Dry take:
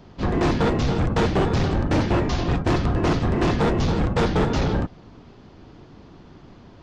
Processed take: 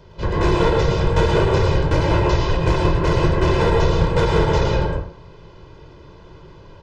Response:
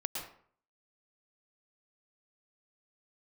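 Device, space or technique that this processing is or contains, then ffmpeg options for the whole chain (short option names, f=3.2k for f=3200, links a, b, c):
microphone above a desk: -filter_complex "[0:a]aecho=1:1:2:0.82[a];[1:a]atrim=start_sample=2205[b];[a][b]afir=irnorm=-1:irlink=0"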